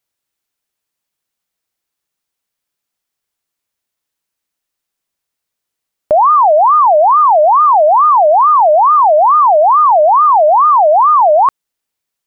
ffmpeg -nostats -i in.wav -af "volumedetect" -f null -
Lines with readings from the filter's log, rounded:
mean_volume: -11.2 dB
max_volume: -4.6 dB